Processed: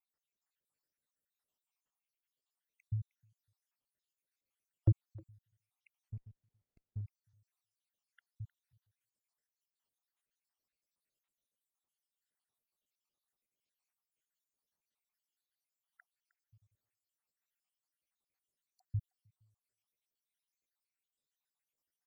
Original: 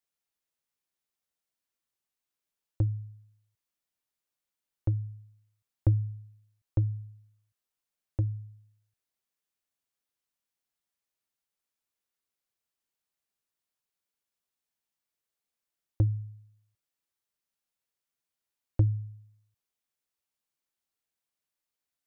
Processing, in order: random spectral dropouts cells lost 77%; vibrato 3.1 Hz 41 cents; speakerphone echo 0.31 s, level -17 dB; 6.1–7.01 running maximum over 33 samples; gain +1.5 dB

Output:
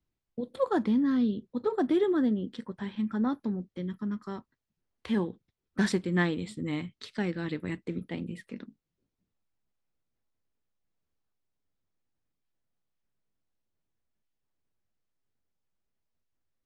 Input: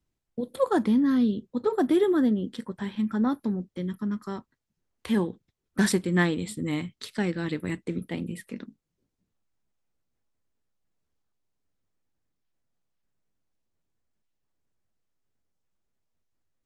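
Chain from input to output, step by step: LPF 5700 Hz 12 dB/oct; gain -3.5 dB

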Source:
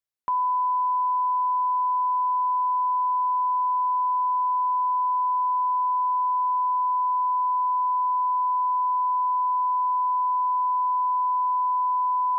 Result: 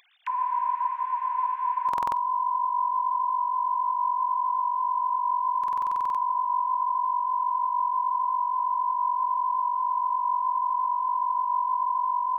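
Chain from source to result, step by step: sine-wave speech; tilt +4 dB/oct; tape echo 0.142 s, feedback 59%, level -7 dB, low-pass 1000 Hz; upward compressor, threshold -30 dBFS; bell 870 Hz -7.5 dB 0.56 oct; stuck buffer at 1.61/5.59, samples 2048, times 11; spectral freeze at 0.3, 1.59 s; gain +2 dB

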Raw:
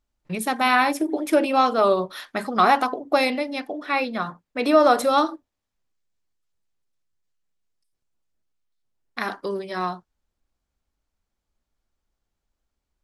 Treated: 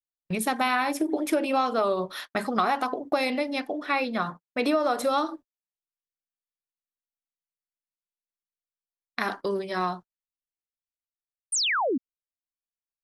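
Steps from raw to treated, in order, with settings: gate -38 dBFS, range -36 dB; compressor 6:1, threshold -21 dBFS, peak gain reduction 10.5 dB; painted sound fall, 11.52–11.98, 230–9800 Hz -25 dBFS

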